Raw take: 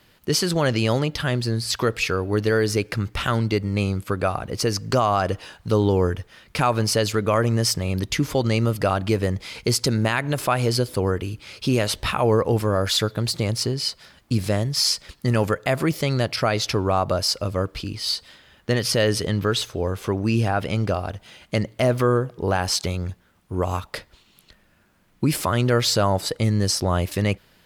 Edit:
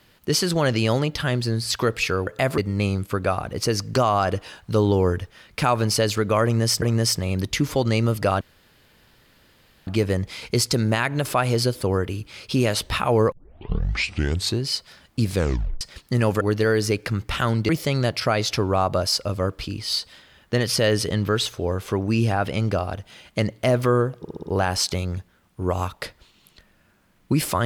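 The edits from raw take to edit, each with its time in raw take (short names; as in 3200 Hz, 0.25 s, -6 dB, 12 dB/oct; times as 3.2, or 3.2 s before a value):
2.27–3.55 swap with 15.54–15.85
7.41–7.79 loop, 2 plays
9 insert room tone 1.46 s
12.45 tape start 1.34 s
14.46 tape stop 0.48 s
22.35 stutter 0.06 s, 5 plays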